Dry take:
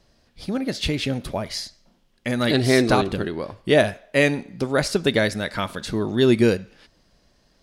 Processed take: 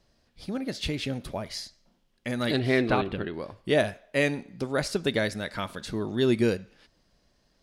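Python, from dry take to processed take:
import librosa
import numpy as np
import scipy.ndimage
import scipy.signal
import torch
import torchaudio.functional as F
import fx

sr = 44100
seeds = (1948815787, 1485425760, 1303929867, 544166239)

y = fx.high_shelf_res(x, sr, hz=4300.0, db=-12.5, q=1.5, at=(2.59, 3.34))
y = F.gain(torch.from_numpy(y), -6.5).numpy()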